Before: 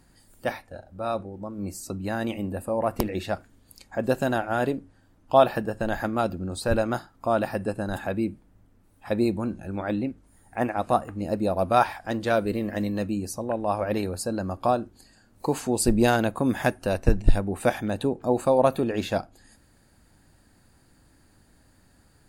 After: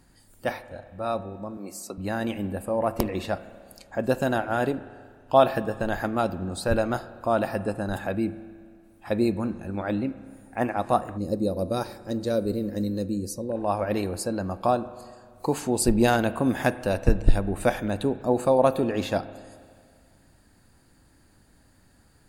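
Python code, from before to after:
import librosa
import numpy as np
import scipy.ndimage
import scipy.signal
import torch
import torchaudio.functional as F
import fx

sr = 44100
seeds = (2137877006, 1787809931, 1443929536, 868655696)

y = fx.highpass(x, sr, hz=330.0, slope=12, at=(1.57, 1.98))
y = fx.rev_spring(y, sr, rt60_s=2.0, pass_ms=(30, 48), chirp_ms=50, drr_db=14.5)
y = fx.spec_box(y, sr, start_s=11.17, length_s=2.39, low_hz=590.0, high_hz=3700.0, gain_db=-13)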